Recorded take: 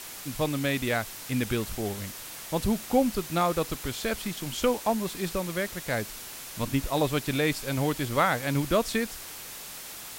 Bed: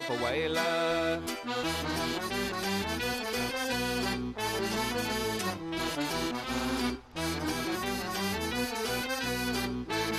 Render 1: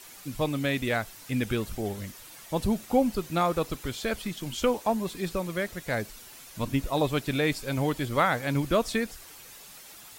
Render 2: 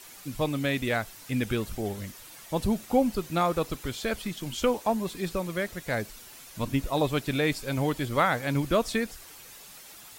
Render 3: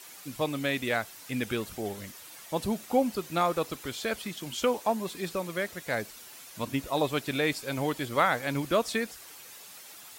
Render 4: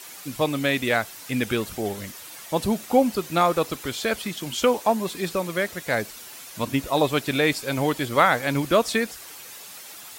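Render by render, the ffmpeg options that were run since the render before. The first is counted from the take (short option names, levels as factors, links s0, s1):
-af "afftdn=nr=9:nf=-42"
-filter_complex "[0:a]asettb=1/sr,asplit=3[s0][s1][s2];[s0]atrim=end=5.744[s3];[s1]atrim=start=5.74:end=6.33,asetpts=PTS-STARTPTS,afade=t=in:d=0.004:c=qsin,afade=t=out:st=0.586:d=0.004:c=qsin,aeval=exprs='val(0)*gte(abs(val(0)),0.0015)':c=same[s4];[s2]atrim=start=6.326[s5];[s3][s4]acrossfade=d=0.004:c1=hsin:c2=qsin[s6];[s6][s5]acrossfade=d=0.004:c1=qsin:c2=hsin"
-af "highpass=57,lowshelf=f=180:g=-10"
-af "volume=2.11"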